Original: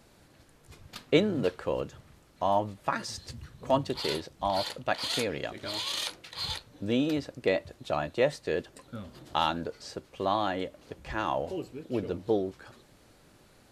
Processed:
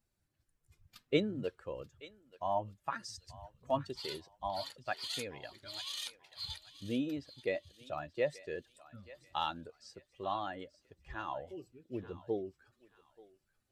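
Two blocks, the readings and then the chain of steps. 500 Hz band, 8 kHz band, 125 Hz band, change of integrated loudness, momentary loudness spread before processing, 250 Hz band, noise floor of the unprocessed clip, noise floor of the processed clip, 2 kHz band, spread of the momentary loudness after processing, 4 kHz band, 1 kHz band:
−9.0 dB, −8.5 dB, −9.0 dB, −8.5 dB, 13 LU, −8.5 dB, −60 dBFS, −81 dBFS, −8.5 dB, 16 LU, −8.5 dB, −8.0 dB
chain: spectral dynamics exaggerated over time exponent 1.5
feedback echo with a high-pass in the loop 883 ms, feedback 35%, high-pass 1,100 Hz, level −14.5 dB
level −5.5 dB

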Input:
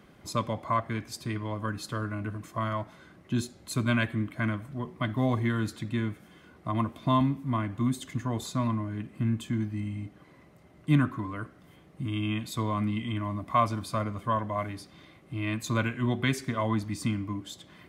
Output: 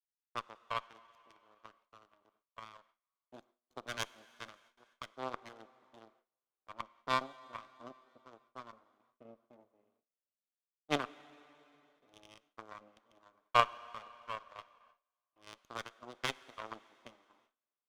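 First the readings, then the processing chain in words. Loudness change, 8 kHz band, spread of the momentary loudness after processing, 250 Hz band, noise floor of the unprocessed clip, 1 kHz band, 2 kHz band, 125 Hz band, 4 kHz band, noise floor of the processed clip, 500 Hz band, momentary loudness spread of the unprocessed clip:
−9.0 dB, −12.0 dB, 24 LU, −23.5 dB, −56 dBFS, −7.5 dB, −8.5 dB, −28.0 dB, −5.0 dB, below −85 dBFS, −10.5 dB, 10 LU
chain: adaptive Wiener filter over 25 samples
power curve on the samples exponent 3
dense smooth reverb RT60 3.3 s, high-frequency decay 0.9×, DRR 17.5 dB
noise gate with hold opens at −59 dBFS
loudspeaker in its box 460–7,800 Hz, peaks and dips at 1,200 Hz +7 dB, 3,400 Hz +6 dB, 6,400 Hz +9 dB
windowed peak hold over 3 samples
level +2.5 dB

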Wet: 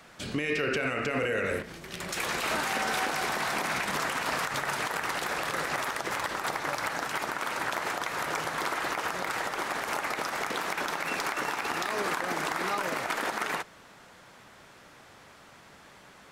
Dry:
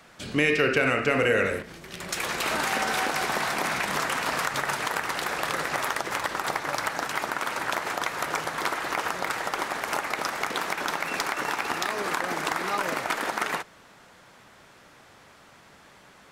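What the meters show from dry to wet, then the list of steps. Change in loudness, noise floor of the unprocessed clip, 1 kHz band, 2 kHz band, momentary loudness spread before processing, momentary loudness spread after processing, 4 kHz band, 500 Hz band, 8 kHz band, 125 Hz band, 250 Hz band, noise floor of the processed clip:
−3.5 dB, −53 dBFS, −3.0 dB, −3.5 dB, 6 LU, 3 LU, −3.0 dB, −4.0 dB, −3.0 dB, −3.5 dB, −3.5 dB, −53 dBFS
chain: brickwall limiter −20 dBFS, peak gain reduction 10.5 dB

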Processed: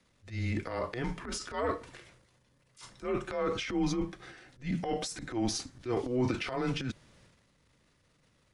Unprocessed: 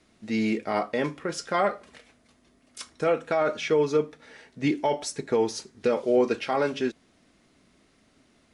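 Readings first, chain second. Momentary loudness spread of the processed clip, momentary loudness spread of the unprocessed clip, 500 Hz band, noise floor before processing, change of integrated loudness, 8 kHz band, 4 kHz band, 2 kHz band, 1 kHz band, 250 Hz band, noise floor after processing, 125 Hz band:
15 LU, 8 LU, −11.0 dB, −64 dBFS, −7.5 dB, −2.5 dB, −2.5 dB, −7.0 dB, −9.0 dB, −5.0 dB, −69 dBFS, +2.0 dB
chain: frequency shifter −120 Hz
transient designer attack −11 dB, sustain +9 dB
level −6.5 dB

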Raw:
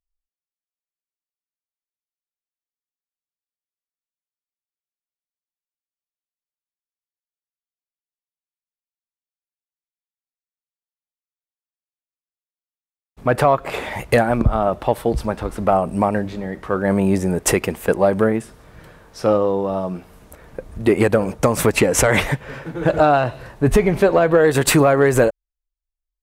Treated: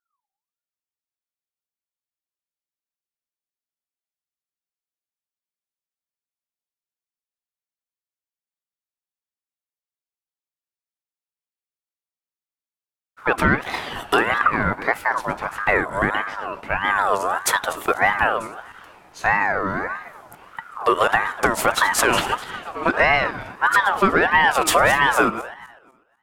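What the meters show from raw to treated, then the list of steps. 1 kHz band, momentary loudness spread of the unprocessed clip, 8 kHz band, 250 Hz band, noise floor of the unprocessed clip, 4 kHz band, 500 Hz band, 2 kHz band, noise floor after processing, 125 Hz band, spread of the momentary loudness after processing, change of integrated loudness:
+3.0 dB, 11 LU, −3.0 dB, −8.5 dB, below −85 dBFS, +3.0 dB, −7.5 dB, +6.5 dB, below −85 dBFS, −11.0 dB, 13 LU, −1.5 dB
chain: feedback delay that plays each chunk backwards 124 ms, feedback 50%, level −13 dB
ring modulator whose carrier an LFO sweeps 1,100 Hz, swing 30%, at 1.6 Hz

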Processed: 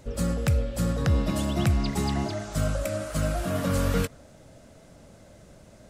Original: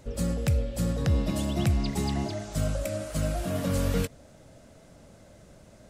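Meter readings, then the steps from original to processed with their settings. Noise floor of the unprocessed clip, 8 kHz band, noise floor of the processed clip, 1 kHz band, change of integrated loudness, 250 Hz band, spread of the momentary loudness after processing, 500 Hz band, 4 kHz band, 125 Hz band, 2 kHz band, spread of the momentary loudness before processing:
−54 dBFS, +1.5 dB, −52 dBFS, +4.5 dB, +2.0 dB, +1.5 dB, 5 LU, +2.0 dB, +2.0 dB, +1.5 dB, +4.5 dB, 5 LU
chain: dynamic equaliser 1,300 Hz, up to +6 dB, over −54 dBFS, Q 1.7
level +1.5 dB

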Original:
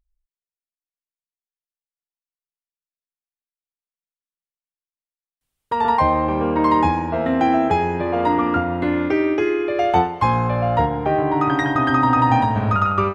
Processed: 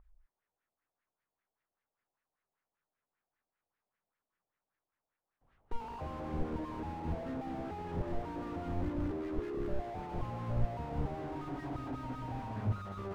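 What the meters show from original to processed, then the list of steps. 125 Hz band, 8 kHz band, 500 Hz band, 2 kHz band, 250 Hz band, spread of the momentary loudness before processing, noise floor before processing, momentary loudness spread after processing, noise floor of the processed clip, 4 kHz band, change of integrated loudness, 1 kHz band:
−14.5 dB, can't be measured, −20.5 dB, −26.0 dB, −19.5 dB, 4 LU, below −85 dBFS, 5 LU, below −85 dBFS, −22.5 dB, −20.5 dB, −25.5 dB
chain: gate with flip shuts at −11 dBFS, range −29 dB
auto-filter low-pass sine 5.1 Hz 680–1,900 Hz
slew-rate limiting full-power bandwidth 1.7 Hz
level +10.5 dB

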